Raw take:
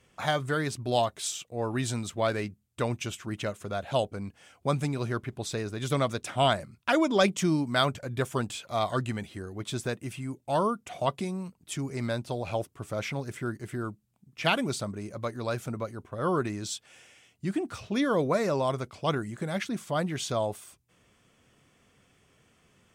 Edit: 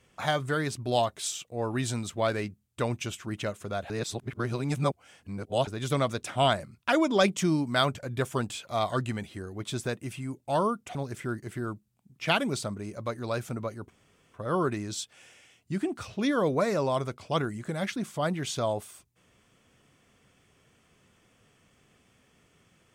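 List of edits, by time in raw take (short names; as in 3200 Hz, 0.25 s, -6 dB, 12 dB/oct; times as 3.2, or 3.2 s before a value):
3.9–5.67 reverse
10.95–13.12 cut
16.07 insert room tone 0.44 s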